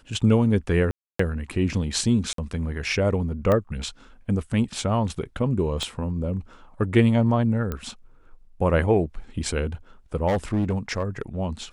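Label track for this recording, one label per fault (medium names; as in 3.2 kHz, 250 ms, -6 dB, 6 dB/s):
0.910000	1.190000	dropout 284 ms
2.330000	2.380000	dropout 53 ms
3.520000	3.520000	pop -11 dBFS
5.830000	5.830000	pop -16 dBFS
7.720000	7.720000	pop -16 dBFS
10.280000	11.220000	clipped -18.5 dBFS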